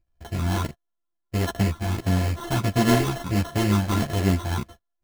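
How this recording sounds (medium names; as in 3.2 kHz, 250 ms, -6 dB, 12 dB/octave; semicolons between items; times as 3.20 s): a buzz of ramps at a fixed pitch in blocks of 64 samples; phasing stages 8, 1.5 Hz, lowest notch 430–3500 Hz; aliases and images of a low sample rate 2.4 kHz, jitter 0%; a shimmering, thickened sound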